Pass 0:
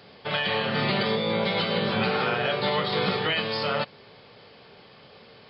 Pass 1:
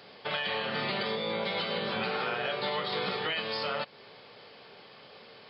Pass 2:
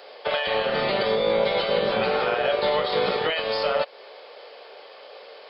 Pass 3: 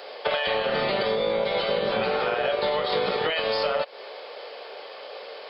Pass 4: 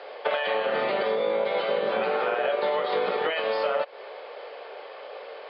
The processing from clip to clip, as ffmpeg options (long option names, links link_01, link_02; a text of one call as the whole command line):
ffmpeg -i in.wav -af "lowshelf=frequency=180:gain=-12,acompressor=threshold=-33dB:ratio=2" out.wav
ffmpeg -i in.wav -filter_complex "[0:a]equalizer=frequency=550:width=1.5:gain=9.5,acrossover=split=360|2700[link_01][link_02][link_03];[link_01]acrusher=bits=5:mix=0:aa=0.5[link_04];[link_04][link_02][link_03]amix=inputs=3:normalize=0,volume=4.5dB" out.wav
ffmpeg -i in.wav -af "acompressor=threshold=-26dB:ratio=6,volume=4.5dB" out.wav
ffmpeg -i in.wav -af "highpass=270,lowpass=2500" out.wav